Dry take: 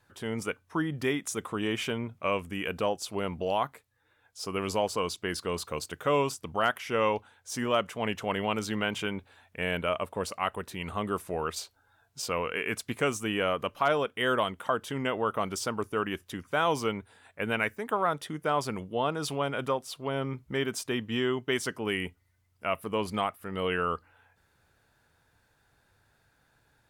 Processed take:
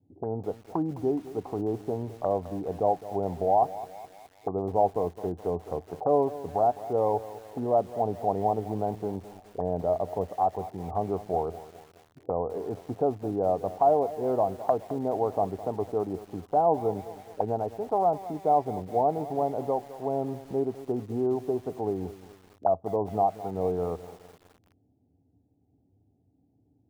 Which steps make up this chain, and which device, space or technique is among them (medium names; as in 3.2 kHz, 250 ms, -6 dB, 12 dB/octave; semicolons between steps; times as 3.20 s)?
steep low-pass 760 Hz 36 dB/octave; envelope filter bass rig (touch-sensitive low-pass 260–4700 Hz up, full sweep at -31 dBFS; cabinet simulation 78–2200 Hz, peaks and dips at 140 Hz -9 dB, 220 Hz -9 dB, 340 Hz -4 dB, 540 Hz -6 dB, 770 Hz +10 dB); bit-crushed delay 210 ms, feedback 55%, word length 8-bit, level -15 dB; trim +6 dB